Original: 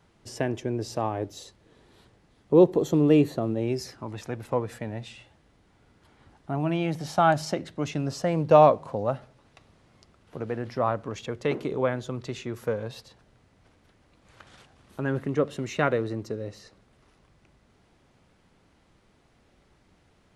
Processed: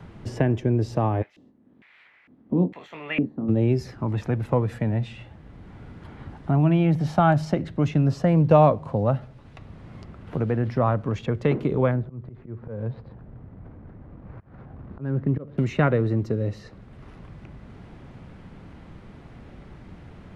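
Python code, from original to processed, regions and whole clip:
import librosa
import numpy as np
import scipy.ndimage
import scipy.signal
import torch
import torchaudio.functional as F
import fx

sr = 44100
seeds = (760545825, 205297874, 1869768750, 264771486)

y = fx.spec_clip(x, sr, under_db=17, at=(1.21, 3.48), fade=0.02)
y = fx.doubler(y, sr, ms=23.0, db=-8.5, at=(1.21, 3.48), fade=0.02)
y = fx.filter_lfo_bandpass(y, sr, shape='square', hz=1.1, low_hz=250.0, high_hz=2200.0, q=4.4, at=(1.21, 3.48), fade=0.02)
y = fx.chain(y, sr, fx.median_filter(points=15),
    fx.auto_swell(attack_ms=345.0),
    fx.spacing_loss(db_at_10k=35), at=(11.91, 15.58))
y = fx.bass_treble(y, sr, bass_db=10, treble_db=-11)
y = fx.band_squash(y, sr, depth_pct=40)
y = F.gain(torch.from_numpy(y), 2.5).numpy()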